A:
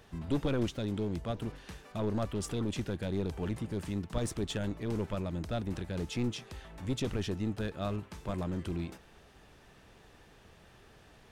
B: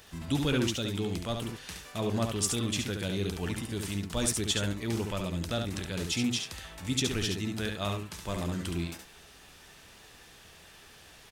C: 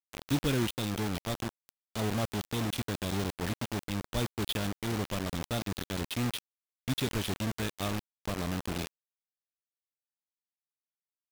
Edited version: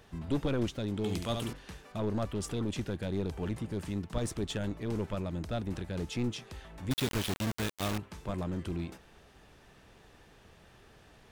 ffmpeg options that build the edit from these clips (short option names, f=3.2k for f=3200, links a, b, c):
-filter_complex "[0:a]asplit=3[a][b][c];[a]atrim=end=1.042[d];[1:a]atrim=start=1.038:end=1.532[e];[b]atrim=start=1.528:end=6.912[f];[2:a]atrim=start=6.908:end=7.982[g];[c]atrim=start=7.978[h];[d][e]acrossfade=d=0.004:c1=hsin:c2=hsin[i];[i][f]acrossfade=d=0.004:c1=hsin:c2=hsin[j];[j][g]acrossfade=d=0.004:c1=hsin:c2=hsin[k];[k][h]acrossfade=d=0.004:c1=hsin:c2=hsin"